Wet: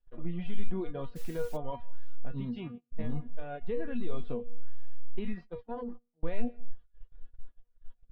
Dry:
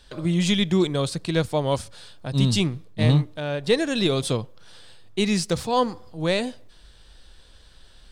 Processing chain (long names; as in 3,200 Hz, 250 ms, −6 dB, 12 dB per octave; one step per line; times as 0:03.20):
0:02.31–0:02.91: high-pass filter 50 Hz
tuned comb filter 240 Hz, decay 0.47 s, harmonics all, mix 90%
single-tap delay 167 ms −18.5 dB
brickwall limiter −30 dBFS, peak gain reduction 10 dB
0:05.32–0:06.23: tube saturation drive 29 dB, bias 0.65
low-pass filter 2,800 Hz 24 dB per octave
0:01.15–0:01.56: background noise blue −43 dBFS
reverb reduction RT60 0.68 s
spectral tilt −4 dB per octave
noise gate −39 dBFS, range −21 dB
parametric band 88 Hz −14.5 dB 2.6 octaves
level +2.5 dB